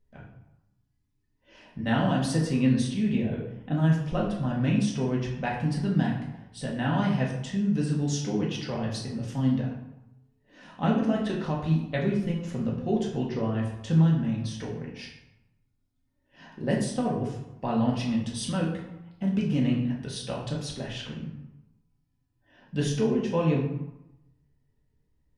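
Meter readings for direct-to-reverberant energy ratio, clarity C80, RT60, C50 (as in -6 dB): -3.5 dB, 7.5 dB, 0.95 s, 5.0 dB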